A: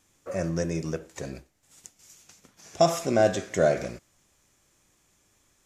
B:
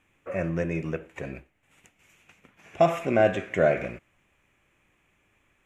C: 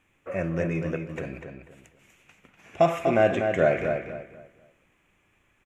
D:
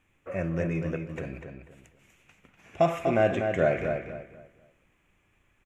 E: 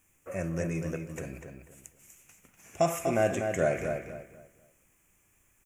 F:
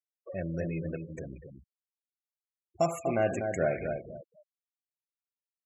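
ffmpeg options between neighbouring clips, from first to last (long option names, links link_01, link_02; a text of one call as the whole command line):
ffmpeg -i in.wav -af "highshelf=frequency=3500:width_type=q:width=3:gain=-11.5" out.wav
ffmpeg -i in.wav -filter_complex "[0:a]asplit=2[link_01][link_02];[link_02]adelay=245,lowpass=frequency=3800:poles=1,volume=-6dB,asplit=2[link_03][link_04];[link_04]adelay=245,lowpass=frequency=3800:poles=1,volume=0.29,asplit=2[link_05][link_06];[link_06]adelay=245,lowpass=frequency=3800:poles=1,volume=0.29,asplit=2[link_07][link_08];[link_08]adelay=245,lowpass=frequency=3800:poles=1,volume=0.29[link_09];[link_01][link_03][link_05][link_07][link_09]amix=inputs=5:normalize=0" out.wav
ffmpeg -i in.wav -af "lowshelf=frequency=110:gain=7,volume=-3dB" out.wav
ffmpeg -i in.wav -af "aexciter=amount=9.6:drive=3.2:freq=5500,volume=-3dB" out.wav
ffmpeg -i in.wav -af "afftfilt=real='re*gte(hypot(re,im),0.02)':imag='im*gte(hypot(re,im),0.02)':win_size=1024:overlap=0.75,volume=-1.5dB" out.wav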